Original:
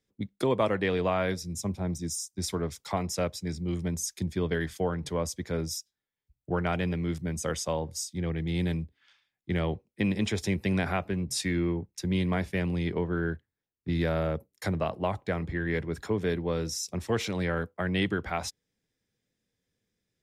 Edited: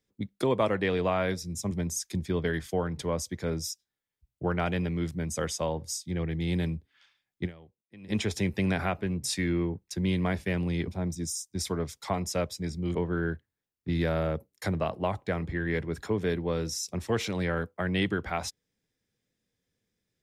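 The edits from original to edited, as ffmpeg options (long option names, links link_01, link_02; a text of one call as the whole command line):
ffmpeg -i in.wav -filter_complex "[0:a]asplit=6[link_01][link_02][link_03][link_04][link_05][link_06];[link_01]atrim=end=1.712[link_07];[link_02]atrim=start=3.778:end=9.78,asetpts=PTS-STARTPTS,afade=type=out:start_time=5.742:duration=0.26:curve=exp:silence=0.0707946[link_08];[link_03]atrim=start=9.78:end=9.92,asetpts=PTS-STARTPTS,volume=-23dB[link_09];[link_04]atrim=start=9.92:end=12.952,asetpts=PTS-STARTPTS,afade=type=in:duration=0.26:curve=exp:silence=0.0707946[link_10];[link_05]atrim=start=1.708:end=3.782[link_11];[link_06]atrim=start=12.948[link_12];[link_08][link_09][link_10]concat=n=3:v=0:a=1[link_13];[link_07][link_13]acrossfade=duration=0.004:curve1=hsin:curve2=hsin[link_14];[link_14][link_11]acrossfade=duration=0.004:curve1=hsin:curve2=hsin[link_15];[link_15][link_12]acrossfade=duration=0.004:curve1=hsin:curve2=hsin" out.wav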